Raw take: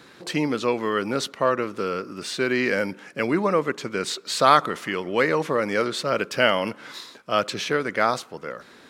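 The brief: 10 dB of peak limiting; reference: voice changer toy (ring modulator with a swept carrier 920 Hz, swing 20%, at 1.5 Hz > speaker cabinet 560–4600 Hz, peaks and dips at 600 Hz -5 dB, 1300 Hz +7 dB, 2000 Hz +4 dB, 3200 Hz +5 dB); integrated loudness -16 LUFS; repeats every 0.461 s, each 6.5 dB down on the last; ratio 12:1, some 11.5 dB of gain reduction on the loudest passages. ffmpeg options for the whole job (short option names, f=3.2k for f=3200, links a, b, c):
-af "acompressor=threshold=-21dB:ratio=12,alimiter=limit=-20dB:level=0:latency=1,aecho=1:1:461|922|1383|1844|2305|2766:0.473|0.222|0.105|0.0491|0.0231|0.0109,aeval=exprs='val(0)*sin(2*PI*920*n/s+920*0.2/1.5*sin(2*PI*1.5*n/s))':c=same,highpass=560,equalizer=f=600:t=q:w=4:g=-5,equalizer=f=1.3k:t=q:w=4:g=7,equalizer=f=2k:t=q:w=4:g=4,equalizer=f=3.2k:t=q:w=4:g=5,lowpass=f=4.6k:w=0.5412,lowpass=f=4.6k:w=1.3066,volume=14.5dB"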